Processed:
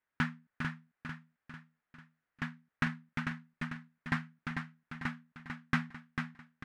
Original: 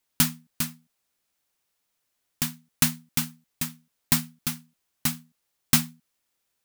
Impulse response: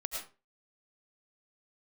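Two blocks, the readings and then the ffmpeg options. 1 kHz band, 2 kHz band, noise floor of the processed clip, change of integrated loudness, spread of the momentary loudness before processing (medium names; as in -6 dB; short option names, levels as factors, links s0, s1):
-2.0 dB, -0.5 dB, under -85 dBFS, -13.0 dB, 10 LU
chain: -af "lowpass=f=1700:t=q:w=2.8,aecho=1:1:446|892|1338|1784|2230|2676:0.501|0.236|0.111|0.052|0.0245|0.0115,volume=0.422"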